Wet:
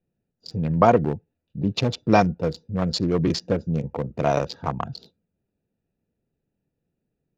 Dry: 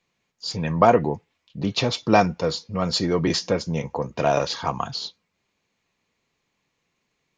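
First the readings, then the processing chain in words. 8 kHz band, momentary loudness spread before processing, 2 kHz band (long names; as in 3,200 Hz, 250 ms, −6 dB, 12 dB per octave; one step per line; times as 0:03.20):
−6.5 dB, 13 LU, −3.0 dB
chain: adaptive Wiener filter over 41 samples
low-shelf EQ 220 Hz +5.5 dB
level −1 dB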